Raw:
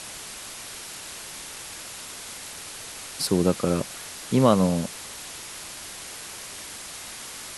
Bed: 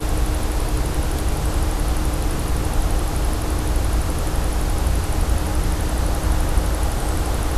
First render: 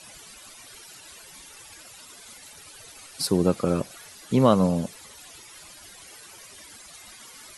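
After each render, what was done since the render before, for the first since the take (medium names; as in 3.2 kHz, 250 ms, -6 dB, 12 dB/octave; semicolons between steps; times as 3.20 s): noise reduction 14 dB, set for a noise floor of -39 dBFS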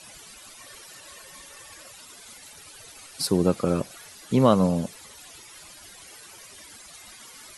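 0.60–1.92 s: small resonant body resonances 560/1100/1800 Hz, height 10 dB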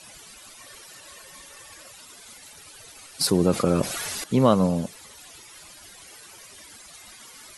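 3.21–4.24 s: level flattener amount 50%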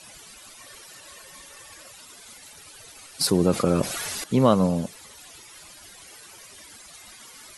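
no audible change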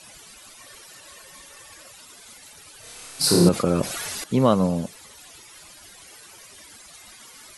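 2.80–3.49 s: flutter echo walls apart 4.9 m, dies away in 0.99 s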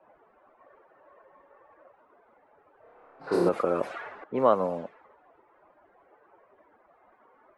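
three-band isolator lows -21 dB, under 360 Hz, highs -24 dB, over 2.1 kHz; level-controlled noise filter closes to 760 Hz, open at -22.5 dBFS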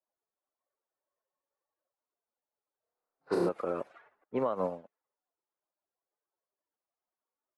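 peak limiter -18.5 dBFS, peak gain reduction 10 dB; upward expansion 2.5:1, over -50 dBFS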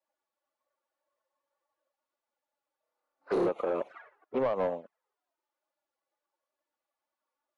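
touch-sensitive flanger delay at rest 3.5 ms, full sweep at -32 dBFS; overdrive pedal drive 18 dB, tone 1.8 kHz, clips at -19.5 dBFS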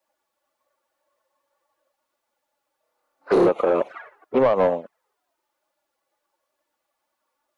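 trim +11 dB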